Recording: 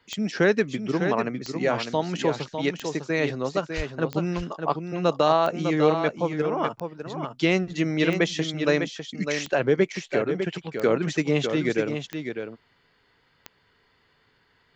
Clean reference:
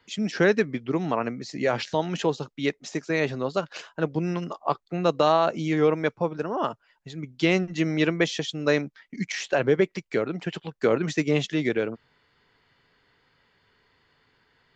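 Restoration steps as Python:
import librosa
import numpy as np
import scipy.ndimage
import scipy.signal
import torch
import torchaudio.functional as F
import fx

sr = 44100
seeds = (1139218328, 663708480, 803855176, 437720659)

y = fx.fix_declick_ar(x, sr, threshold=10.0)
y = fx.highpass(y, sr, hz=140.0, slope=24, at=(3.76, 3.88), fade=0.02)
y = fx.fix_echo_inverse(y, sr, delay_ms=602, level_db=-7.0)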